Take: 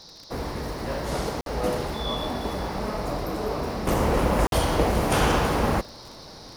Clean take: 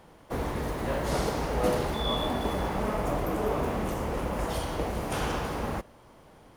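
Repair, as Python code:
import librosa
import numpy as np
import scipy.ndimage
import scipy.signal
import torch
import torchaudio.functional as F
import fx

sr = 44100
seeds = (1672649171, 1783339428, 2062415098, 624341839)

y = fx.fix_declick_ar(x, sr, threshold=6.5)
y = fx.fix_interpolate(y, sr, at_s=(1.41, 4.47), length_ms=52.0)
y = fx.noise_reduce(y, sr, print_start_s=5.92, print_end_s=6.42, reduce_db=10.0)
y = fx.fix_level(y, sr, at_s=3.87, step_db=-9.0)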